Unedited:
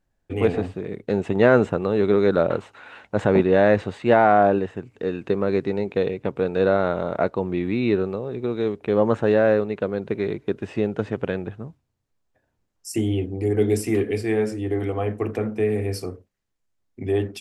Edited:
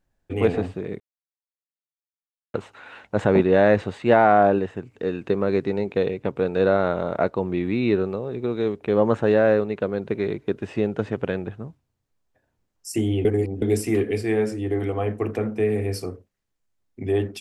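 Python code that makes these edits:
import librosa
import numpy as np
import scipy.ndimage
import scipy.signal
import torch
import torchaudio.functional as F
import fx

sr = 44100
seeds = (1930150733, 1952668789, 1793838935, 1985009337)

y = fx.edit(x, sr, fx.silence(start_s=1.0, length_s=1.54),
    fx.reverse_span(start_s=13.25, length_s=0.37), tone=tone)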